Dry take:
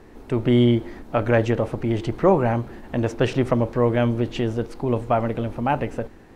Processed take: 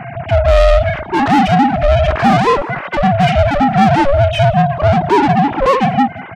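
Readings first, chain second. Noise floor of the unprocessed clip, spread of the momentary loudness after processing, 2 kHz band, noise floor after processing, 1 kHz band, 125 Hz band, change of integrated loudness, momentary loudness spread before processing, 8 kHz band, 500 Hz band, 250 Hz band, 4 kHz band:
-46 dBFS, 5 LU, +13.0 dB, -29 dBFS, +16.0 dB, +8.5 dB, +10.0 dB, 9 LU, n/a, +8.5 dB, +7.0 dB, +12.0 dB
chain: sine-wave speech; overdrive pedal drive 33 dB, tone 2800 Hz, clips at -6 dBFS; in parallel at -10.5 dB: soft clip -18.5 dBFS, distortion -11 dB; on the sum: ring modulator 280 Hz; harmonic-percussive split harmonic +9 dB; on a send: feedback echo 0.181 s, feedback 16%, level -23 dB; on the sum: gain -3.5 dB

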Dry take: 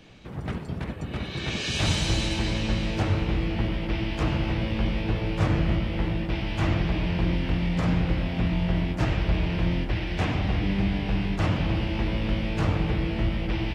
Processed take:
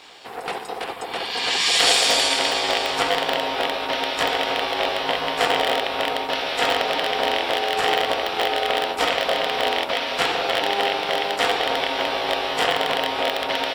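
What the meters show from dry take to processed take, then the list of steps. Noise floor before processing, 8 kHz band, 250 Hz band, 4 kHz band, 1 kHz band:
-36 dBFS, n/a, -8.0 dB, +13.5 dB, +14.5 dB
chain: rattling part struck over -21 dBFS, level -20 dBFS; low shelf 110 Hz -6 dB; ring modulator 600 Hz; tilt +3.5 dB/oct; notch 6300 Hz, Q 6.9; gain +8.5 dB

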